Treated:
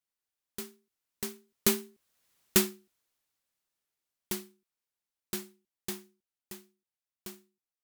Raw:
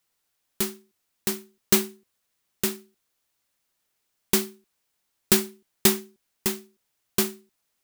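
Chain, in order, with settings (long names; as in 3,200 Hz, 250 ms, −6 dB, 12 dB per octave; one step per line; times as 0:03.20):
source passing by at 0:02.39, 12 m/s, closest 3.1 metres
level +4 dB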